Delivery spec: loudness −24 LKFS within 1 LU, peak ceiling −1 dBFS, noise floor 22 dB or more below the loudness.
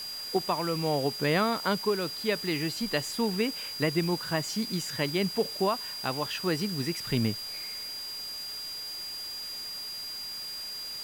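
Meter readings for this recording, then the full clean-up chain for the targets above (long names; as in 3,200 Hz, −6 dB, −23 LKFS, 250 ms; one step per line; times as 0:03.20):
interfering tone 4,800 Hz; level of the tone −36 dBFS; background noise floor −38 dBFS; target noise floor −53 dBFS; integrated loudness −30.5 LKFS; sample peak −14.5 dBFS; target loudness −24.0 LKFS
→ notch filter 4,800 Hz, Q 30
noise reduction from a noise print 15 dB
level +6.5 dB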